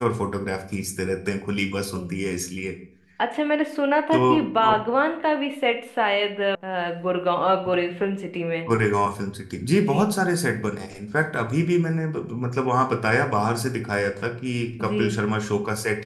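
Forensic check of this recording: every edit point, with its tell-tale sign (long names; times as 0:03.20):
0:06.55: cut off before it has died away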